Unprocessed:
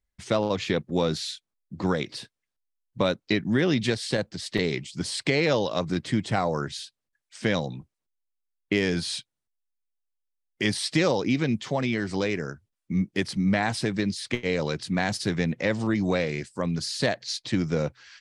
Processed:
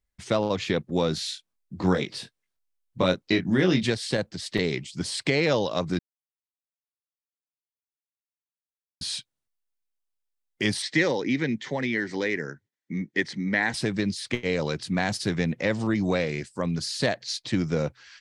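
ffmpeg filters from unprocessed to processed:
-filter_complex "[0:a]asettb=1/sr,asplit=3[a][b][c];[a]atrim=end=1.154[d];[b]atrim=start=1.15:end=3.86,asetpts=PTS-STARTPTS,afade=t=in:d=0.004:c=qsin,afade=t=out:st=2.706:d=0.004:c=qsin,asplit=2[e][f];[f]adelay=22,volume=-4.5dB[g];[e][g]amix=inputs=2:normalize=0,atrim=end_sample=119511[h];[c]atrim=start=3.856[i];[d][h]acrossfade=d=0.004:c1=hsin:c2=qsin[j];[j][i]acrossfade=d=0.004:c1=qsin:c2=hsin,asettb=1/sr,asplit=3[k][l][m];[k]atrim=end=10.824[n];[l]atrim=start=10.82:end=13.74,asetpts=PTS-STARTPTS,afade=t=in:d=0.004:c=qsin,afade=t=out:st=2.916:d=0.004:c=qsin,highpass=f=140:w=0.5412,highpass=f=140:w=1.3066,equalizer=f=190:t=q:w=4:g=-6,equalizer=f=670:t=q:w=4:g=-7,equalizer=f=1.2k:t=q:w=4:g=-8,equalizer=f=1.9k:t=q:w=4:g=10,equalizer=f=2.7k:t=q:w=4:g=-5,equalizer=f=4.9k:t=q:w=4:g=-5,lowpass=f=6.7k:w=0.5412,lowpass=f=6.7k:w=1.3066[o];[m]atrim=start=13.736[p];[n][o]acrossfade=d=0.004:c1=hsin:c2=qsin[q];[q][p]acrossfade=d=0.004:c1=qsin:c2=hsin,asplit=3[r][s][t];[r]atrim=end=5.99,asetpts=PTS-STARTPTS,afade=t=out:st=5.986:d=0.004:c=hsin[u];[s]atrim=start=5.99:end=9.01,asetpts=PTS-STARTPTS,volume=0[v];[t]atrim=start=9.01,asetpts=PTS-STARTPTS,afade=t=in:d=0.004:c=hsin[w];[u][v][w]concat=n=3:v=0:a=1"

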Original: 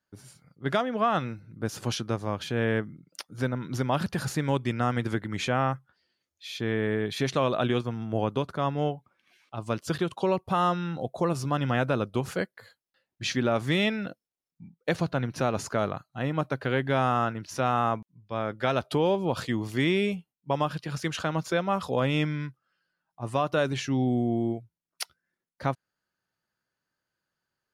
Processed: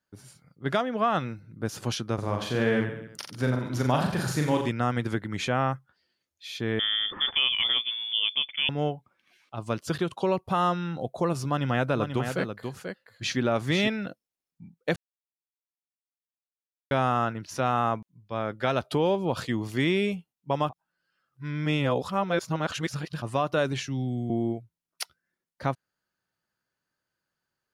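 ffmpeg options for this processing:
-filter_complex "[0:a]asettb=1/sr,asplit=3[a][b][c];[a]atrim=end=2.144[d];[b]atrim=start=2.14:end=4.69,asetpts=PTS-STARTPTS,afade=t=in:d=0.004:c=qsin,afade=t=out:st=2.546:d=0.004:c=qsin,aecho=1:1:40|86|138.9|199.7|269.7|350.1:0.631|0.398|0.251|0.158|0.1|0.0631,atrim=end_sample=112455[e];[c]atrim=start=4.686[f];[d][e]acrossfade=d=0.004:c1=hsin:c2=qsin[g];[g][f]acrossfade=d=0.004:c1=qsin:c2=hsin,asettb=1/sr,asplit=3[h][i][j];[h]atrim=end=6.794[k];[i]atrim=start=6.79:end=8.69,asetpts=PTS-STARTPTS,afade=t=in:d=0.004:c=qsin,afade=t=out:st=1.896:d=0.004:c=qsin,lowpass=f=3.1k:t=q:w=0.5098,lowpass=f=3.1k:t=q:w=0.6013,lowpass=f=3.1k:t=q:w=0.9,lowpass=f=3.1k:t=q:w=2.563,afreqshift=-3600[l];[j]atrim=start=8.686[m];[k][l]acrossfade=d=0.004:c1=hsin:c2=qsin[n];[n][m]acrossfade=d=0.004:c1=qsin:c2=hsin,asettb=1/sr,asplit=3[o][p][q];[o]atrim=end=11.474[r];[p]atrim=start=11.47:end=13.88,asetpts=PTS-STARTPTS,afade=t=in:d=0.004:c=qsin,afade=t=out:st=2.406:d=0.004:c=qsin,aecho=1:1:487:0.447,atrim=end_sample=106281[s];[q]atrim=start=13.876[t];[r][s]acrossfade=d=0.004:c1=hsin:c2=qsin[u];[u][t]acrossfade=d=0.004:c1=qsin:c2=hsin,asettb=1/sr,asplit=3[v][w][x];[v]atrim=end=23.834[y];[w]atrim=start=23.83:end=24.3,asetpts=PTS-STARTPTS,afade=t=in:d=0.004:c=qsin,afade=t=out:st=0.466:d=0.004:c=qsin,acrossover=split=190|3000[z][aa][ab];[aa]acompressor=threshold=-53dB:ratio=1.5:attack=3.2:release=140:knee=2.83:detection=peak[ac];[z][ac][ab]amix=inputs=3:normalize=0[ad];[x]atrim=start=24.296[ae];[y][ad]acrossfade=d=0.004:c1=hsin:c2=qsin[af];[af][ae]acrossfade=d=0.004:c1=qsin:c2=hsin,asplit=5[ag][ah][ai][aj][ak];[ag]atrim=end=14.96,asetpts=PTS-STARTPTS,afade=t=out:st=14.956:d=0.004:c=hsin[al];[ah]atrim=start=14.96:end=16.91,asetpts=PTS-STARTPTS,volume=0[am];[ai]atrim=start=16.91:end=20.692,asetpts=PTS-STARTPTS,afade=t=in:d=0.004:c=hsin[an];[aj]atrim=start=20.688:end=23.222,asetpts=PTS-STARTPTS,areverse[ao];[ak]atrim=start=23.218[ap];[al][am][an]concat=n=3:v=0:a=1[aq];[aq][ao]acrossfade=d=0.004:c1=hsin:c2=hsin[ar];[ar][ap]acrossfade=d=0.004:c1=hsin:c2=hsin"

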